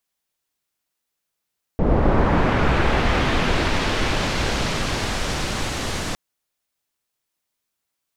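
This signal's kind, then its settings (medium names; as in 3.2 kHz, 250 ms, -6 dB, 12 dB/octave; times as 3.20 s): swept filtered noise pink, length 4.36 s lowpass, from 480 Hz, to 7.7 kHz, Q 0.82, linear, gain ramp -12 dB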